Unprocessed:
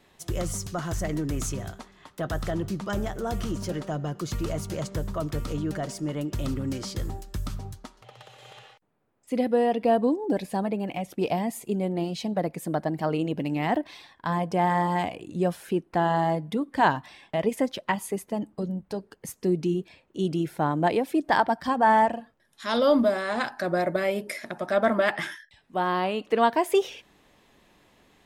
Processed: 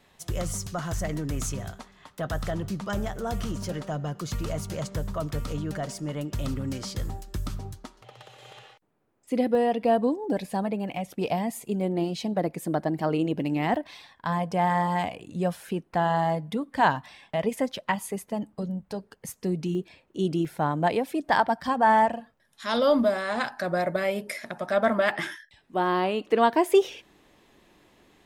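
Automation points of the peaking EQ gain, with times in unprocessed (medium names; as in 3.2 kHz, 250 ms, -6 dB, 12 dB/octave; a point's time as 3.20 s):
peaking EQ 340 Hz 0.49 oct
-6 dB
from 7.28 s +3.5 dB
from 9.55 s -4.5 dB
from 11.81 s +2.5 dB
from 13.74 s -7 dB
from 19.75 s +1 dB
from 20.45 s -5.5 dB
from 25.11 s +5 dB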